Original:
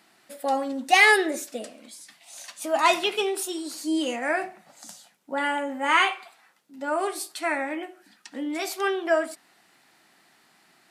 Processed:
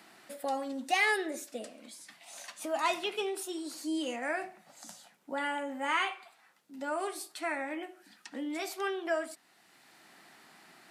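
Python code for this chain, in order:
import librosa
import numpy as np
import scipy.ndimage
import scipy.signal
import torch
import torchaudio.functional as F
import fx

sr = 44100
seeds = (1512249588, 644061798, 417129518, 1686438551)

y = fx.band_squash(x, sr, depth_pct=40)
y = y * librosa.db_to_amplitude(-8.0)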